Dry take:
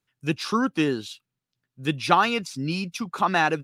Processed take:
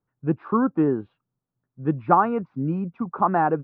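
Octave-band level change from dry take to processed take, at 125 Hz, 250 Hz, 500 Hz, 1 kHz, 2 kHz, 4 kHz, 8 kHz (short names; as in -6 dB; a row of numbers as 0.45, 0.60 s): +3.0 dB, +3.0 dB, +3.0 dB, +2.0 dB, -9.0 dB, under -30 dB, under -40 dB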